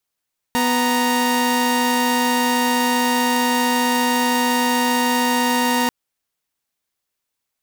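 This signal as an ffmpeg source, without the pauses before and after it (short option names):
-f lavfi -i "aevalsrc='0.15*((2*mod(246.94*t,1)-1)+(2*mod(932.33*t,1)-1))':d=5.34:s=44100"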